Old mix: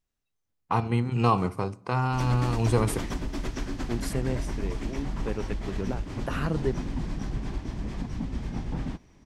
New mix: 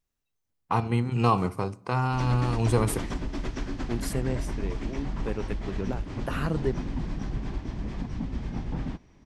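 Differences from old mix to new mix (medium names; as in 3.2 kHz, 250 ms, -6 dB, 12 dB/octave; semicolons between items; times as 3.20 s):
background: add distance through air 75 m; master: add treble shelf 11 kHz +5 dB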